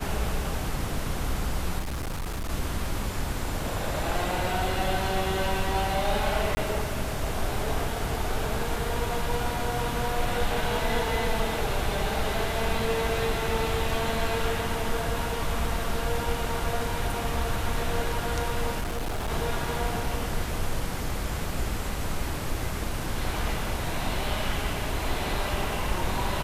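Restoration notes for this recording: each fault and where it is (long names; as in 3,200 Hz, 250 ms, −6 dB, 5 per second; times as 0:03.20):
0:01.79–0:02.50: clipping −28 dBFS
0:06.55–0:06.57: drop-out 20 ms
0:18.81–0:19.31: clipping −26 dBFS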